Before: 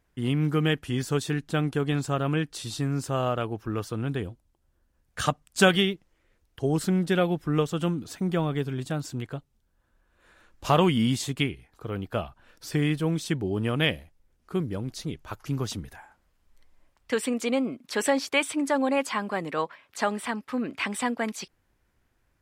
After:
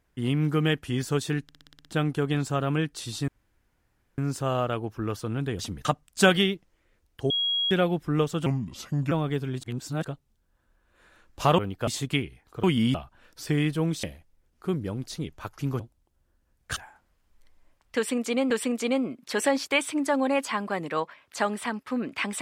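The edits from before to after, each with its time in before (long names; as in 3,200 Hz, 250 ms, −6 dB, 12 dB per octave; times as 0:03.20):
0:01.43: stutter 0.06 s, 8 plays
0:02.86: splice in room tone 0.90 s
0:04.27–0:05.24: swap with 0:15.66–0:15.92
0:06.69–0:07.10: beep over 3,300 Hz −23 dBFS
0:07.85–0:08.36: play speed 78%
0:08.88–0:09.29: reverse
0:10.83–0:11.14: swap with 0:11.90–0:12.19
0:13.28–0:13.90: remove
0:17.12–0:17.66: repeat, 2 plays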